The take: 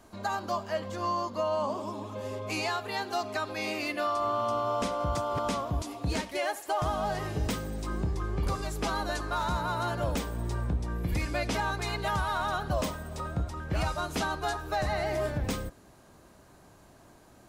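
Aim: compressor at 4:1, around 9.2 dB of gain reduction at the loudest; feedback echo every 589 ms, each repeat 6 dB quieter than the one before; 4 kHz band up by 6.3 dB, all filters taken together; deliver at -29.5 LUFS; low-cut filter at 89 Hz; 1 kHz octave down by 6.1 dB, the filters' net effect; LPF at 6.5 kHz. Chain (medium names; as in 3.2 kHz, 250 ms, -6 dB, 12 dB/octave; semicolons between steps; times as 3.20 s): high-pass 89 Hz; low-pass 6.5 kHz; peaking EQ 1 kHz -8.5 dB; peaking EQ 4 kHz +8.5 dB; compression 4:1, threshold -39 dBFS; feedback delay 589 ms, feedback 50%, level -6 dB; trim +10.5 dB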